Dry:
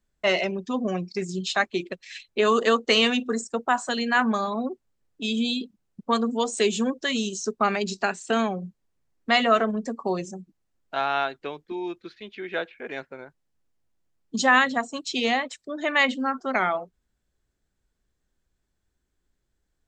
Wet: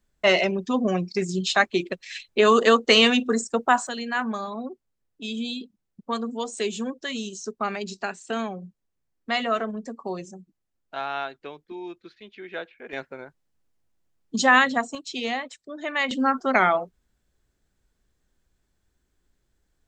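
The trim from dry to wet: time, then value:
+3.5 dB
from 3.87 s -5 dB
from 12.93 s +1.5 dB
from 14.95 s -4.5 dB
from 16.11 s +4.5 dB

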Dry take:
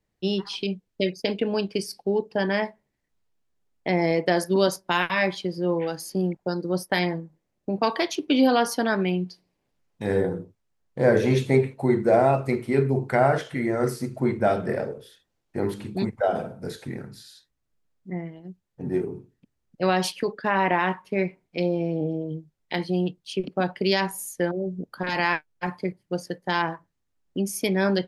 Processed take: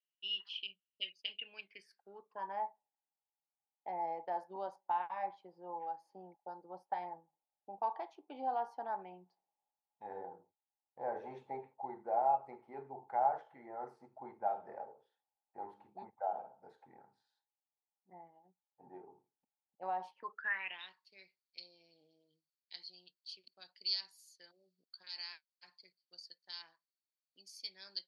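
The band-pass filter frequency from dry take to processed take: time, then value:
band-pass filter, Q 14
1.39 s 2.9 kHz
2.59 s 830 Hz
20.15 s 830 Hz
20.92 s 4.5 kHz

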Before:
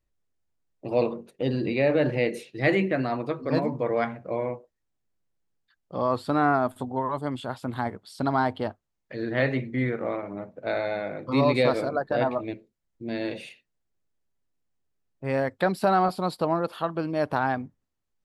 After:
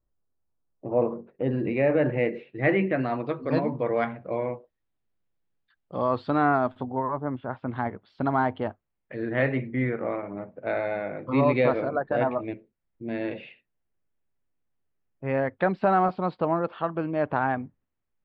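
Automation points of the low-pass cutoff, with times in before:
low-pass 24 dB/octave
0.86 s 1.4 kHz
1.65 s 2.4 kHz
2.66 s 2.4 kHz
3.27 s 3.8 kHz
6.67 s 3.8 kHz
7.25 s 1.6 kHz
7.80 s 2.8 kHz

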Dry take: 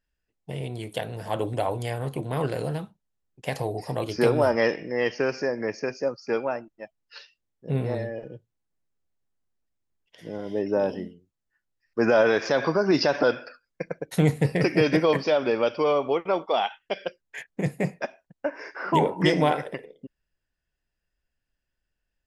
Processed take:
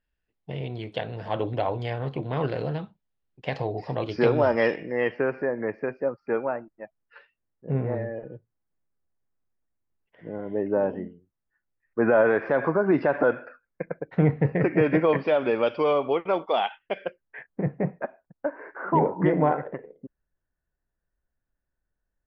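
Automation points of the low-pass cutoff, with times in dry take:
low-pass 24 dB/octave
4.74 s 4.1 kHz
5.26 s 2 kHz
14.70 s 2 kHz
15.74 s 3.8 kHz
16.58 s 3.8 kHz
17.55 s 1.6 kHz

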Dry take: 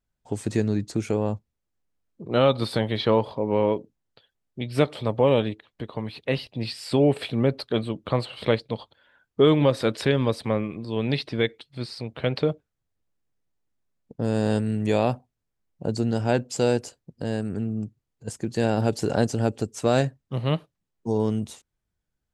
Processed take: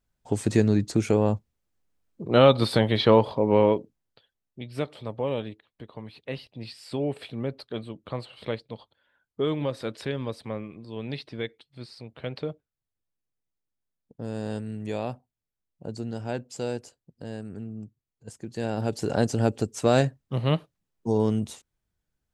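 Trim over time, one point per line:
3.57 s +3 dB
4.79 s -9 dB
18.43 s -9 dB
19.40 s +0.5 dB

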